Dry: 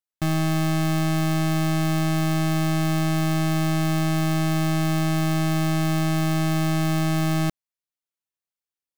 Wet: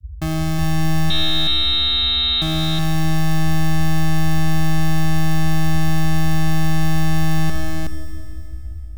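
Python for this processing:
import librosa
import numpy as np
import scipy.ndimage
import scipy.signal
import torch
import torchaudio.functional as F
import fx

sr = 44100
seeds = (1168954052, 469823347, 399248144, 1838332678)

y = fx.freq_invert(x, sr, carrier_hz=3900, at=(1.1, 2.42))
y = fx.dmg_noise_band(y, sr, seeds[0], low_hz=47.0, high_hz=80.0, level_db=-33.0)
y = y + 10.0 ** (-3.5 / 20.0) * np.pad(y, (int(370 * sr / 1000.0), 0))[:len(y)]
y = fx.rev_schroeder(y, sr, rt60_s=3.0, comb_ms=28, drr_db=7.5)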